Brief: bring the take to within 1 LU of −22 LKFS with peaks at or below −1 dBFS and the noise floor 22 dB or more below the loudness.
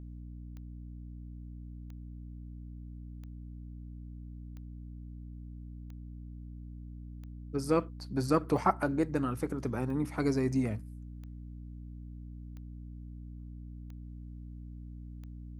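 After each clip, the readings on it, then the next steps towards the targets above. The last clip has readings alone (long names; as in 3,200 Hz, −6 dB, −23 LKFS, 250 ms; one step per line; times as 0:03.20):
number of clicks 12; mains hum 60 Hz; hum harmonics up to 300 Hz; level of the hum −42 dBFS; integrated loudness −37.5 LKFS; sample peak −13.0 dBFS; target loudness −22.0 LKFS
→ click removal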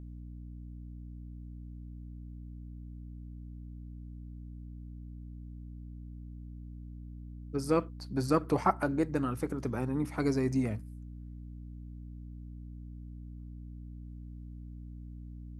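number of clicks 0; mains hum 60 Hz; hum harmonics up to 300 Hz; level of the hum −42 dBFS
→ hum removal 60 Hz, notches 5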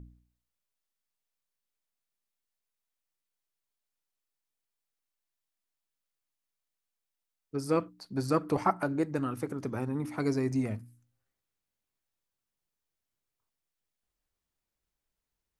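mains hum none found; integrated loudness −32.0 LKFS; sample peak −13.0 dBFS; target loudness −22.0 LKFS
→ level +10 dB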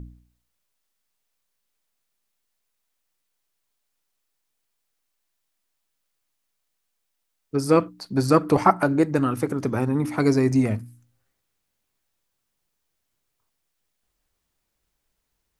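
integrated loudness −22.0 LKFS; sample peak −3.0 dBFS; background noise floor −77 dBFS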